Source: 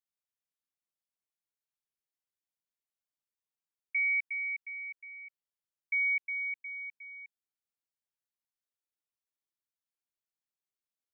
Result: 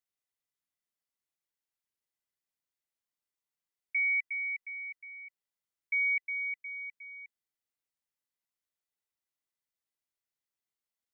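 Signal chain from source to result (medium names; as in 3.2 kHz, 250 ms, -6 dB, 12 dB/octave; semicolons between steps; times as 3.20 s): small resonant body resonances 2 kHz, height 9 dB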